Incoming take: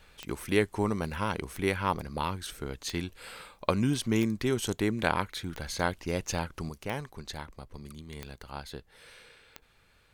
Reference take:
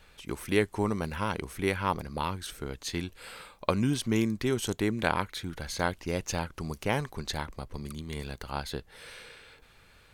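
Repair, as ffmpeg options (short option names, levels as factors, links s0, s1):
-af "adeclick=t=4,asetnsamples=n=441:p=0,asendcmd='6.69 volume volume 6dB',volume=1"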